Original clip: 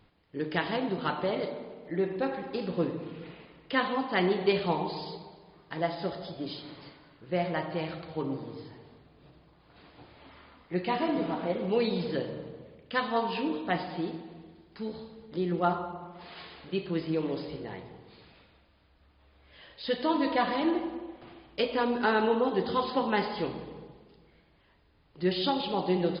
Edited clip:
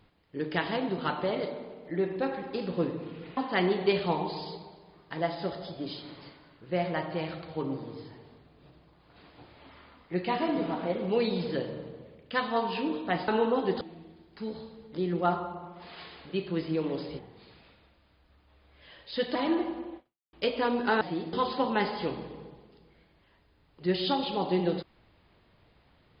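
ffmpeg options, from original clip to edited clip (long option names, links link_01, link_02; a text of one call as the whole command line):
ffmpeg -i in.wav -filter_complex "[0:a]asplit=9[link_01][link_02][link_03][link_04][link_05][link_06][link_07][link_08][link_09];[link_01]atrim=end=3.372[link_10];[link_02]atrim=start=3.968:end=13.882[link_11];[link_03]atrim=start=22.168:end=22.702[link_12];[link_04]atrim=start=14.198:end=17.582[link_13];[link_05]atrim=start=17.898:end=20.062[link_14];[link_06]atrim=start=20.508:end=21.49,asetpts=PTS-STARTPTS,afade=type=out:start_time=0.622:duration=0.36:curve=exp[link_15];[link_07]atrim=start=21.49:end=22.172,asetpts=PTS-STARTPTS,afade=type=in:duration=0.004:curve=hsin[link_16];[link_08]atrim=start=13.878:end=14.202[link_17];[link_09]atrim=start=22.698[link_18];[link_10][link_11]acrossfade=duration=0.004:curve1=hsin:curve2=hsin[link_19];[link_19][link_12]acrossfade=duration=0.004:curve1=hsin:curve2=hsin[link_20];[link_20][link_13]acrossfade=duration=0.004:curve1=hsin:curve2=hsin[link_21];[link_21][link_14]acrossfade=duration=0.004:curve1=hsin:curve2=hsin[link_22];[link_15][link_16]concat=n=2:v=0:a=1[link_23];[link_22][link_23]acrossfade=duration=0.004:curve1=hsin:curve2=hsin[link_24];[link_24][link_17]acrossfade=duration=0.004:curve1=hsin:curve2=hsin[link_25];[link_25][link_18]acrossfade=duration=0.004:curve1=hsin:curve2=hsin" out.wav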